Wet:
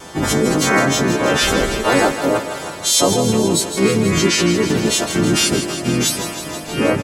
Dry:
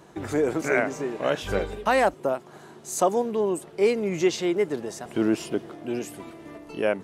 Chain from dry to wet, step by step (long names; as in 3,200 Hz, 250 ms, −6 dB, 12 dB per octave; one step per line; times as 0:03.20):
every partial snapped to a pitch grid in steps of 2 semitones
dynamic equaliser 260 Hz, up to +6 dB, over −46 dBFS, Q 4.6
in parallel at +2 dB: compressor whose output falls as the input rises −30 dBFS, ratio −1
on the sum: pitch vibrato 0.77 Hz 11 cents
pitch-shifted copies added −12 semitones −2 dB, −7 semitones −9 dB, −3 semitones −5 dB
on a send: feedback echo with a high-pass in the loop 160 ms, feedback 75%, high-pass 340 Hz, level −10 dB
on the sum: level +1 dB